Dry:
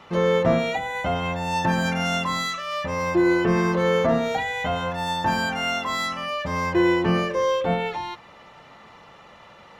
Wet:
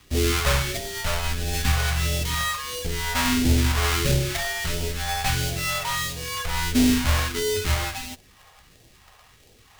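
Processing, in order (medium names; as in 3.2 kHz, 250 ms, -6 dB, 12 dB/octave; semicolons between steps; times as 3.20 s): square wave that keeps the level; frequency shift -100 Hz; phase shifter stages 2, 1.5 Hz, lowest notch 280–1100 Hz; in parallel at -3 dB: bit crusher 6-bit; on the sum: trim -7 dB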